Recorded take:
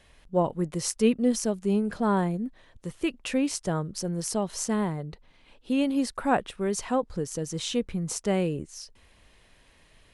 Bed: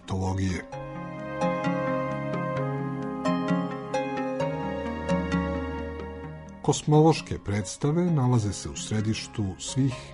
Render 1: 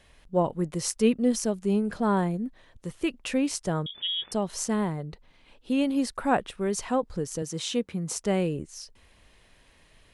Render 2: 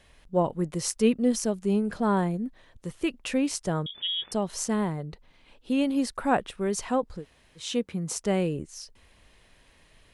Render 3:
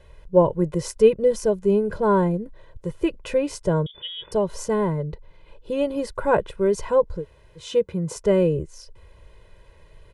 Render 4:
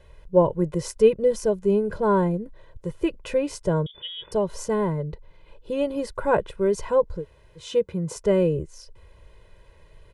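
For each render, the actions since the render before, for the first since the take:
3.86–4.32 inverted band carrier 3500 Hz; 7.42–8.16 HPF 130 Hz
7.18–7.63 room tone, crossfade 0.16 s
tilt shelf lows +7 dB, about 1400 Hz; comb 2 ms, depth 87%
gain -1.5 dB

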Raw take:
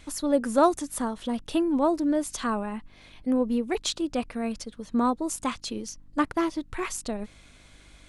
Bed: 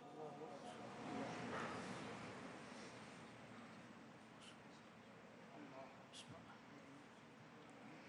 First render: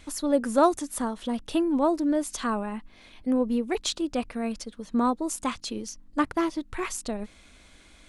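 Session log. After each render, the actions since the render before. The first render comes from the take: de-hum 50 Hz, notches 3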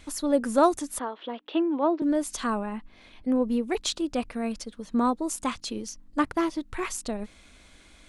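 0.99–2.02 elliptic band-pass 310–3400 Hz, stop band 50 dB; 2.58–3.42 high shelf 6100 Hz -7.5 dB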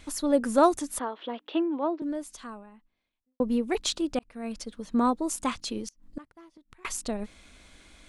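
1.42–3.4 fade out quadratic; 4.19–4.68 fade in; 5.81–6.85 flipped gate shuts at -24 dBFS, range -26 dB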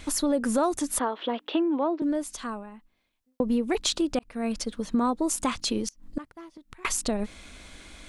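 in parallel at +2 dB: limiter -20.5 dBFS, peak gain reduction 11.5 dB; on the sum: compressor 3:1, threshold -23 dBFS, peak gain reduction 9 dB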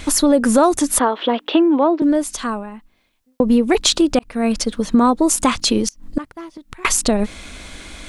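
gain +11 dB; limiter -2 dBFS, peak gain reduction 1 dB

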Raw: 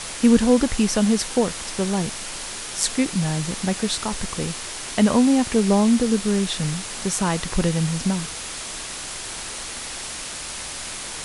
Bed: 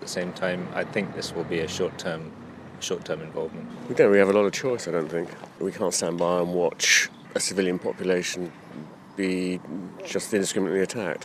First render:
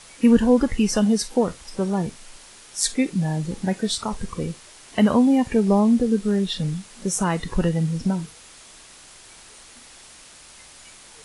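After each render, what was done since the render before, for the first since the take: noise print and reduce 14 dB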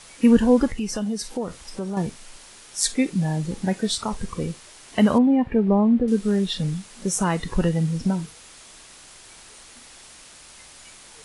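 0.68–1.97 compressor 2:1, threshold -29 dBFS; 5.18–6.08 air absorption 480 m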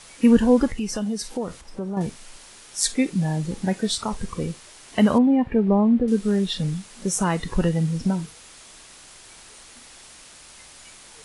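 1.61–2.01 high shelf 2100 Hz -11.5 dB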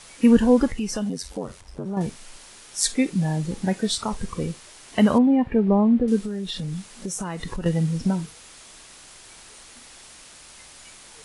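1.09–1.86 ring modulator 46 Hz; 6.24–7.66 compressor, threshold -26 dBFS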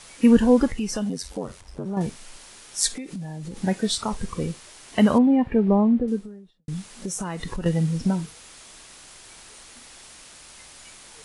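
2.88–3.57 compressor 12:1, threshold -30 dBFS; 5.69–6.68 studio fade out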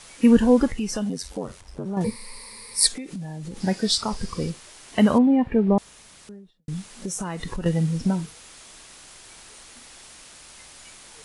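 2.04–2.87 ripple EQ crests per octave 0.92, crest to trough 18 dB; 3.6–4.5 bell 4900 Hz +12 dB 0.32 oct; 5.78–6.29 room tone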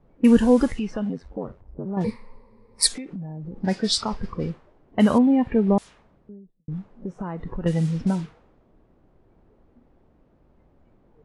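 low-pass opened by the level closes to 340 Hz, open at -16.5 dBFS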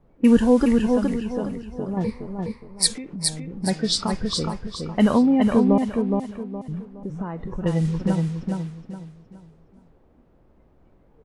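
feedback echo 0.417 s, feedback 33%, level -4 dB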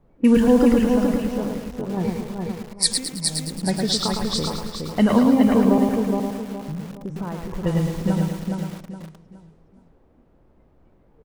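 feedback echo 0.109 s, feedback 54%, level -16 dB; lo-fi delay 0.109 s, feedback 35%, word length 6-bit, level -6 dB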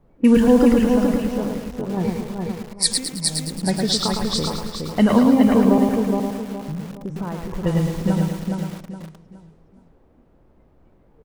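gain +1.5 dB; limiter -3 dBFS, peak gain reduction 1.5 dB

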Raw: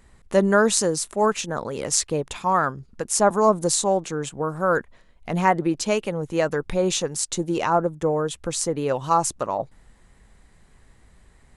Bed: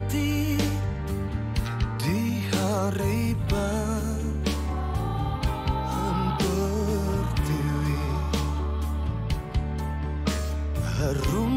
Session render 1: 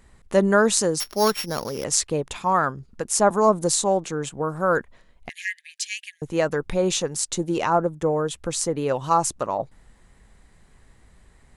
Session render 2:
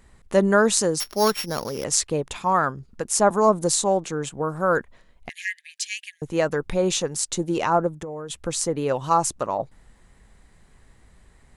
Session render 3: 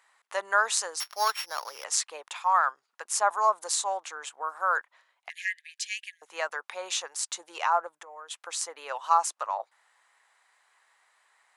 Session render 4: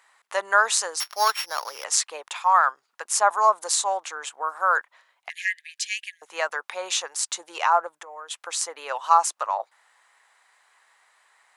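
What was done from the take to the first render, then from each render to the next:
1–1.84 sample sorter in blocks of 8 samples; 5.29–6.22 brick-wall FIR high-pass 1600 Hz
7.88–8.3 compressor 16:1, threshold -29 dBFS
HPF 880 Hz 24 dB/oct; tilt -2 dB/oct
gain +5 dB; limiter -3 dBFS, peak gain reduction 1.5 dB

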